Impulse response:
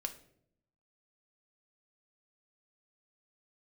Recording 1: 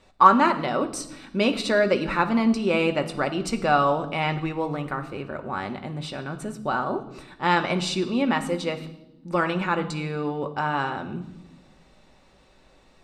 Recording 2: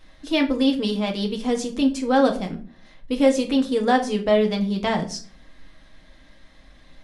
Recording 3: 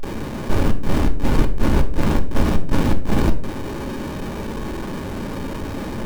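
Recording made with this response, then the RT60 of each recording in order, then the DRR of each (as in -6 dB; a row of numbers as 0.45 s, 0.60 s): 3; no single decay rate, 0.45 s, 0.70 s; 5.5 dB, 2.5 dB, 5.0 dB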